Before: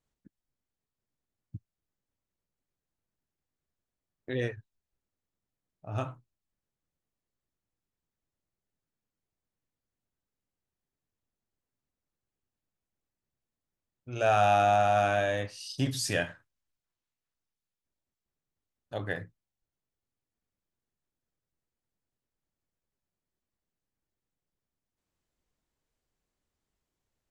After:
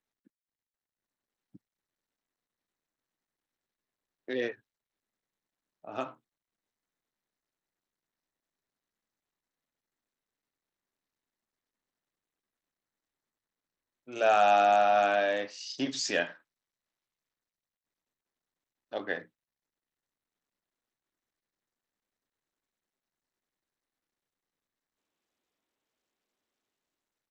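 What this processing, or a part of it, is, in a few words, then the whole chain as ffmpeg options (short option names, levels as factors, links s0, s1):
Bluetooth headset: -af "highpass=f=230:w=0.5412,highpass=f=230:w=1.3066,dynaudnorm=f=260:g=7:m=1.88,aresample=16000,aresample=44100,volume=0.596" -ar 32000 -c:a sbc -b:a 64k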